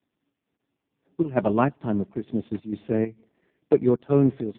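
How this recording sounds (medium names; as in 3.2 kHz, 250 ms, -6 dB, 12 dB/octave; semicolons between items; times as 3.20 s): chopped level 2.2 Hz, depth 60%, duty 70%; AMR-NB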